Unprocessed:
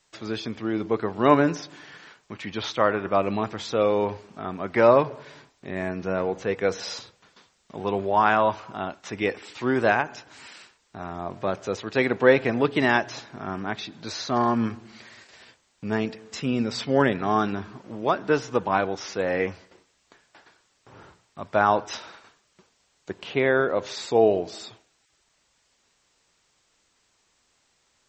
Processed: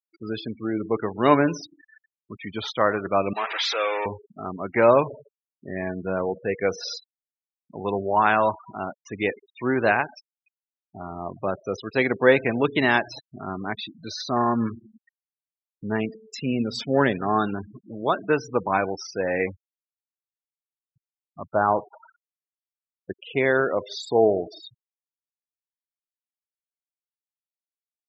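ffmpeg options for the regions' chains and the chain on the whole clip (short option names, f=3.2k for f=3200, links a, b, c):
-filter_complex "[0:a]asettb=1/sr,asplit=3[a][b][c];[a]atrim=end=3.334[d];[b]atrim=start=3.33:end=4.06,asetpts=PTS-STARTPTS,afade=t=in:d=0.004:c=qsin,afade=t=out:st=0.726:d=0.004:c=qsin,aeval=exprs='val(0)+0.5*0.0531*sgn(val(0))':c=same,adynamicequalizer=threshold=0.00891:dfrequency=2000:dqfactor=1.3:tfrequency=2000:tqfactor=1.3:attack=5:release=100:ratio=0.375:range=2.5:mode=boostabove:tftype=bell,highpass=740,lowpass=5.3k[e];[c]atrim=start=4.056[f];[d][e]acrossfade=d=0.004:c1=hsin:c2=qsin[g];[g][f]acrossfade=d=0.004:c1=qsin:c2=hsin,asettb=1/sr,asplit=3[h][i][j];[h]atrim=end=21.554[k];[i]atrim=start=21.55:end=22.03,asetpts=PTS-STARTPTS,afade=t=in:d=0.004:c=qsin,afade=t=out:st=0.476:d=0.004:c=qsin,lowpass=1.3k,equalizer=f=250:w=7.4:g=-5.5[l];[j]atrim=start=22.026[m];[k][l]acrossfade=d=0.004:c1=hsin:c2=qsin[n];[n][m]acrossfade=d=0.004:c1=qsin:c2=hsin,afftfilt=real='re*gte(hypot(re,im),0.0316)':imag='im*gte(hypot(re,im),0.0316)':win_size=1024:overlap=0.75,adynamicequalizer=threshold=0.0224:dfrequency=2000:dqfactor=0.7:tfrequency=2000:tqfactor=0.7:attack=5:release=100:ratio=0.375:range=2:mode=boostabove:tftype=highshelf"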